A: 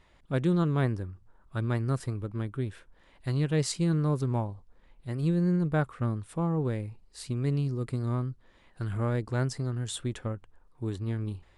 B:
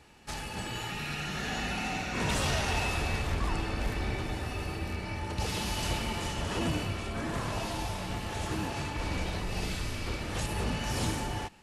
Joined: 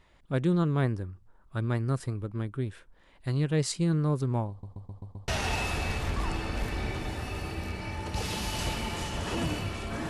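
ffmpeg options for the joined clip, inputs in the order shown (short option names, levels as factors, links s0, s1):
-filter_complex "[0:a]apad=whole_dur=10.09,atrim=end=10.09,asplit=6[s0][s1][s2][s3][s4][s5];[s0]atrim=end=4.632[s6];[s1]atrim=start=4.498:end=4.632[s7];[s2]atrim=start=4.498:end=4.632[s8];[s3]atrim=start=4.498:end=4.632[s9];[s4]atrim=start=4.498:end=4.632[s10];[s5]atrim=start=4.498:end=4.632[s11];[1:a]atrim=start=2.518:end=7.33[s12];[s6][s7]acrossfade=d=0.004:c1=hsin:c2=hsin[s13];[s13][s8]acrossfade=d=0.004:c1=hsin:c2=hsin[s14];[s14][s9]acrossfade=d=0.004:c1=hsin:c2=hsin[s15];[s15][s10]acrossfade=d=0.004:c1=hsin:c2=hsin[s16];[s16][s11]acrossfade=d=0.004:c1=hsin:c2=hsin[s17];[s17][s12]acrossfade=d=0.004:c1=hsin:c2=hsin"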